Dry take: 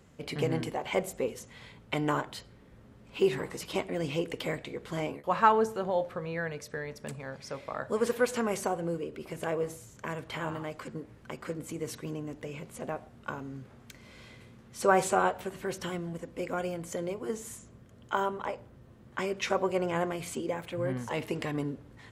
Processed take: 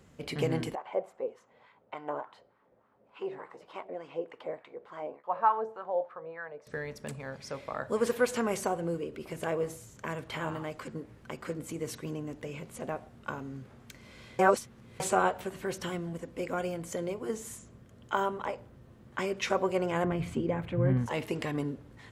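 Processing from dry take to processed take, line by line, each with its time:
0.75–6.67 s: wah-wah 3.4 Hz 560–1200 Hz, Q 2.2
14.39–15.00 s: reverse
20.04–21.06 s: tone controls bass +11 dB, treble -14 dB

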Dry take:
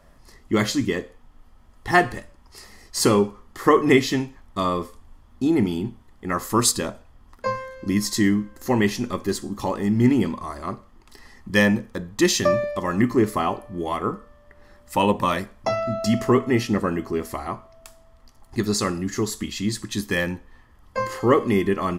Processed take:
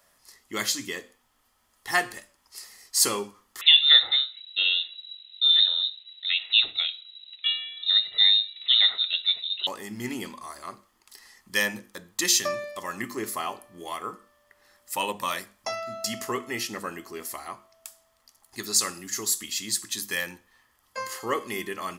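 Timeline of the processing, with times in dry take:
3.61–9.67 s: frequency inversion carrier 3.9 kHz
18.76–19.91 s: treble shelf 5.2 kHz +4 dB
whole clip: tilt EQ +4 dB/octave; hum notches 50/100/150/200/250/300/350 Hz; trim -7.5 dB

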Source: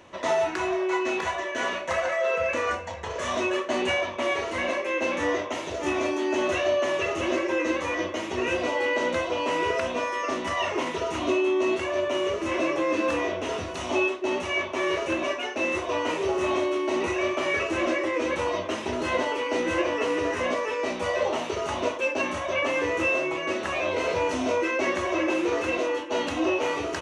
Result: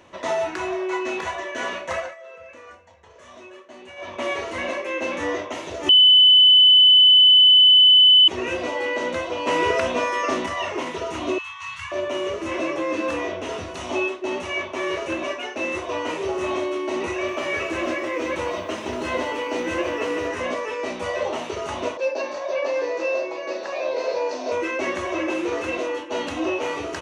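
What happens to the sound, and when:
1.96–4.15 s: dip -17 dB, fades 0.19 s
5.89–8.28 s: bleep 3.01 kHz -9 dBFS
9.47–10.46 s: gain +5 dB
11.38–11.92 s: Chebyshev band-stop 150–1000 Hz, order 4
17.13–20.28 s: bit-crushed delay 150 ms, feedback 35%, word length 9-bit, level -10 dB
21.97–24.52 s: cabinet simulation 430–5900 Hz, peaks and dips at 540 Hz +7 dB, 1.3 kHz -8 dB, 2.1 kHz -6 dB, 3.1 kHz -10 dB, 4.6 kHz +8 dB

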